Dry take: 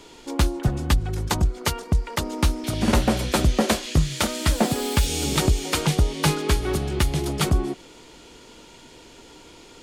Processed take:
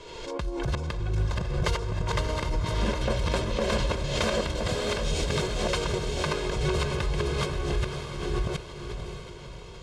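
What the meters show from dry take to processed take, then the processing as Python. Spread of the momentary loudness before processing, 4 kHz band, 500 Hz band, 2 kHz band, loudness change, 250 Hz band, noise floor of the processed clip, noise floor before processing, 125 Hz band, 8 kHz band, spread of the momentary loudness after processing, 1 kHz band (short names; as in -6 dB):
5 LU, -4.5 dB, -1.5 dB, -3.0 dB, -5.5 dB, -8.0 dB, -42 dBFS, -47 dBFS, -5.0 dB, -9.5 dB, 9 LU, -4.5 dB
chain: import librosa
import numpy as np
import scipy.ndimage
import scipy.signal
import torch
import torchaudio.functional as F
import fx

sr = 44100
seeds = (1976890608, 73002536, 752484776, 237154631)

y = fx.reverse_delay(x, sr, ms=571, wet_db=-3.5)
y = y + 0.76 * np.pad(y, (int(1.9 * sr / 1000.0), 0))[:len(y)]
y = fx.over_compress(y, sr, threshold_db=-18.0, ratio=-0.5)
y = fx.air_absorb(y, sr, metres=83.0)
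y = fx.echo_diffused(y, sr, ms=596, feedback_pct=51, wet_db=-6.5)
y = fx.pre_swell(y, sr, db_per_s=40.0)
y = F.gain(torch.from_numpy(y), -8.5).numpy()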